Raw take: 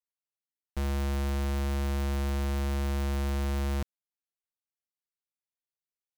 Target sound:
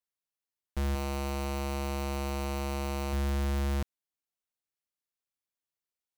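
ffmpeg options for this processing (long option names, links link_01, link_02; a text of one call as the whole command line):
ffmpeg -i in.wav -filter_complex "[0:a]asettb=1/sr,asplit=3[link_01][link_02][link_03];[link_01]atrim=end=0.934[link_04];[link_02]atrim=start=0.93:end=3.13,asetpts=PTS-STARTPTS,afade=type=in:duration=0.004:curve=qsin,afade=type=out:start_time=2.196:duration=0.004:curve=qsin,asplit=2[link_05][link_06];[link_06]adelay=21,volume=-5.5dB[link_07];[link_05][link_07]amix=inputs=2:normalize=0,atrim=end_sample=97020[link_08];[link_03]atrim=start=3.126[link_09];[link_04][link_08]acrossfade=duration=0.004:curve1=hsin:curve2=qsin[link_10];[link_10][link_09]acrossfade=duration=0.004:curve1=qsin:curve2=hsin" out.wav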